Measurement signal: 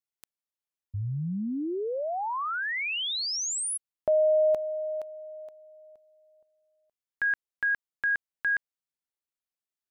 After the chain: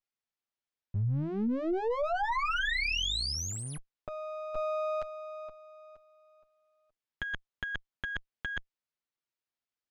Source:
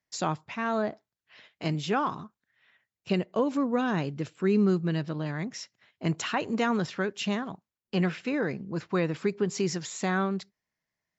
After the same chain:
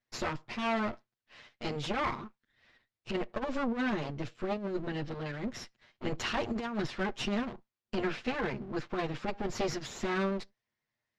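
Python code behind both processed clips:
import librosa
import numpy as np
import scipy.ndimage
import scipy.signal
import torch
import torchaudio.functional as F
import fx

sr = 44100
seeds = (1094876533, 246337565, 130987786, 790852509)

y = fx.lower_of_two(x, sr, delay_ms=8.5)
y = scipy.signal.sosfilt(scipy.signal.butter(2, 4900.0, 'lowpass', fs=sr, output='sos'), y)
y = fx.over_compress(y, sr, threshold_db=-30.0, ratio=-0.5)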